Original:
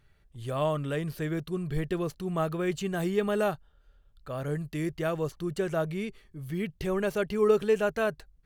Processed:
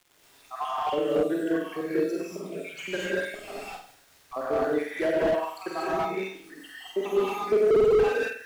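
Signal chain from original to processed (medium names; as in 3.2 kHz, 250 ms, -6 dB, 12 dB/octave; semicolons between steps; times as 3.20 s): random holes in the spectrogram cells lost 81%; high-pass 300 Hz 24 dB/octave; treble shelf 4.8 kHz -10 dB; 3.34–4.33 s: valve stage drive 49 dB, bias 0.7; crackle 120 per s -50 dBFS; flutter echo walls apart 8.1 m, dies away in 0.49 s; gated-style reverb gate 270 ms rising, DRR -7.5 dB; slew-rate limiter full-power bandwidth 32 Hz; trim +5 dB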